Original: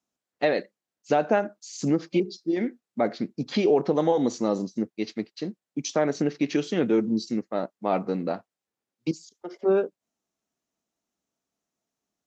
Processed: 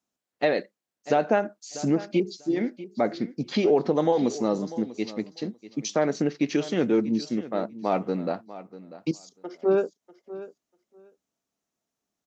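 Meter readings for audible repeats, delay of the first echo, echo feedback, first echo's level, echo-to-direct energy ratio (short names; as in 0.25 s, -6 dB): 2, 0.643 s, 15%, -16.0 dB, -16.0 dB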